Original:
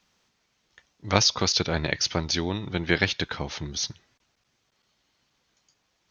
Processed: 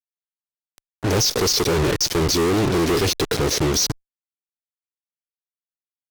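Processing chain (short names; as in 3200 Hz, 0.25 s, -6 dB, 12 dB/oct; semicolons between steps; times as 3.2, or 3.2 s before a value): vibrato 1.2 Hz 11 cents; in parallel at -0.5 dB: negative-ratio compressor -31 dBFS, ratio -0.5; on the sum: EQ curve 210 Hz 0 dB, 420 Hz +10 dB, 1100 Hz -22 dB, 1800 Hz -8 dB, 3200 Hz -11 dB, 5600 Hz +2 dB; fuzz box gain 40 dB, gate -32 dBFS; added harmonics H 5 -22 dB, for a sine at -10 dBFS; gain -3 dB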